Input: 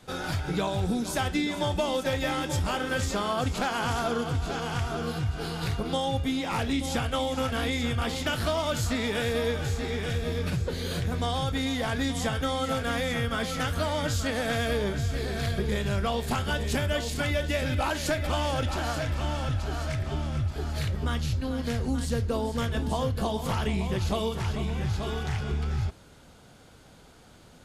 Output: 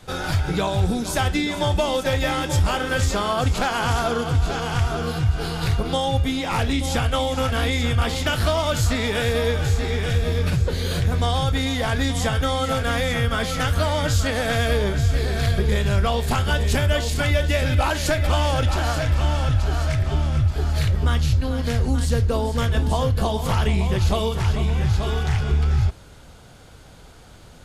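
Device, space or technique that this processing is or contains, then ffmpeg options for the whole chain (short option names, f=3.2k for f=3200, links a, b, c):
low shelf boost with a cut just above: -af "lowshelf=f=100:g=7.5,equalizer=f=230:t=o:w=1.2:g=-4,volume=6dB"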